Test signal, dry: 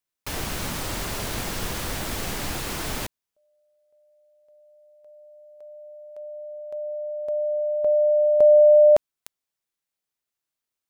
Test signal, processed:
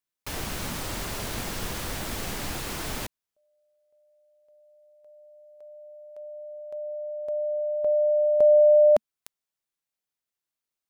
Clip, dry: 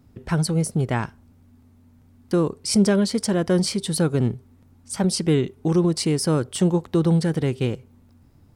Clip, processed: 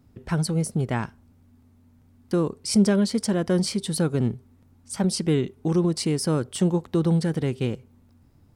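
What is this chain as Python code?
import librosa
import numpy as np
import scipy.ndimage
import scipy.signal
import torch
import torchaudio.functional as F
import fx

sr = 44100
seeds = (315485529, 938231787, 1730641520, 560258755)

y = fx.dynamic_eq(x, sr, hz=220.0, q=3.7, threshold_db=-39.0, ratio=4.0, max_db=3)
y = y * 10.0 ** (-3.0 / 20.0)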